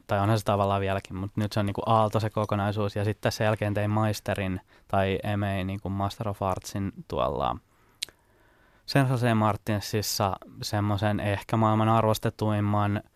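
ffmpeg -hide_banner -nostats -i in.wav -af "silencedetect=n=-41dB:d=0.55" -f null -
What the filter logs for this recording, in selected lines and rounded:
silence_start: 8.09
silence_end: 8.88 | silence_duration: 0.79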